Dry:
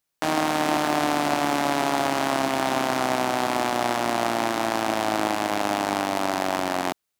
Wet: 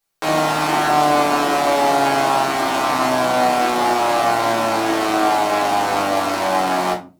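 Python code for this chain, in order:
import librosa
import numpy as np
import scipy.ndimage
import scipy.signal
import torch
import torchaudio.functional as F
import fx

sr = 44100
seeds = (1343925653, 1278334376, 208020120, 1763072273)

y = fx.low_shelf(x, sr, hz=250.0, db=-5.5)
y = fx.room_shoebox(y, sr, seeds[0], volume_m3=140.0, walls='furnished', distance_m=3.6)
y = y * 10.0 ** (-1.5 / 20.0)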